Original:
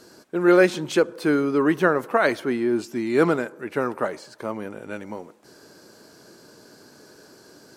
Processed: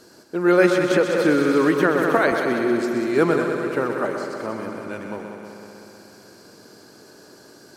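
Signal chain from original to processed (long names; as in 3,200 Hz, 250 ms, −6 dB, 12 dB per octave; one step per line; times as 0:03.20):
echo machine with several playback heads 63 ms, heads second and third, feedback 73%, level −8 dB
0:00.91–0:02.32: multiband upward and downward compressor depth 100%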